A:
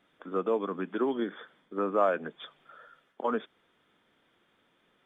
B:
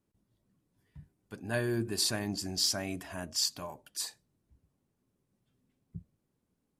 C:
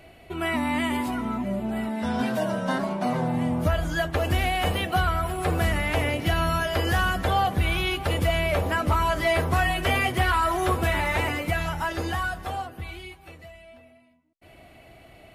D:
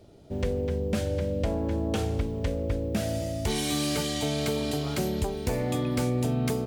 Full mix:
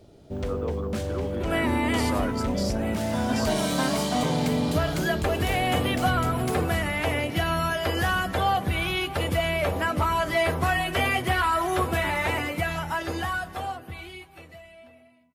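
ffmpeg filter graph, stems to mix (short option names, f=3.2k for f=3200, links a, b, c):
-filter_complex "[0:a]adelay=150,volume=-6.5dB[a];[1:a]alimiter=level_in=0.5dB:limit=-24dB:level=0:latency=1,volume=-0.5dB,volume=-2.5dB[b];[2:a]highpass=84,adelay=1100,volume=-0.5dB[c];[3:a]asoftclip=type=tanh:threshold=-24dB,volume=1dB[d];[a][b][c][d]amix=inputs=4:normalize=0"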